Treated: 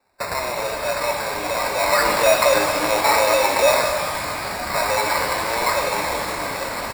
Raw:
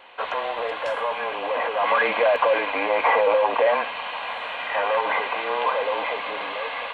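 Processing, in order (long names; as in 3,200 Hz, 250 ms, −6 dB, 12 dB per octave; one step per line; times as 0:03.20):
noise gate with hold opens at −22 dBFS
comb filter 3.2 ms, depth 57%
tape wow and flutter 86 cents
decimation without filtering 14×
reverb with rising layers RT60 2 s, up +12 semitones, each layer −8 dB, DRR 2.5 dB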